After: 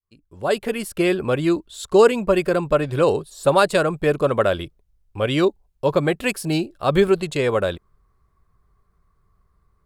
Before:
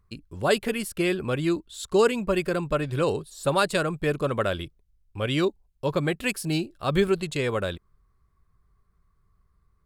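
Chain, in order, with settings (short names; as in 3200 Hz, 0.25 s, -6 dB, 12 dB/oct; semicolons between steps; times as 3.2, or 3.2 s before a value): opening faded in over 0.98 s; bell 640 Hz +6 dB 1.9 oct; gain +2.5 dB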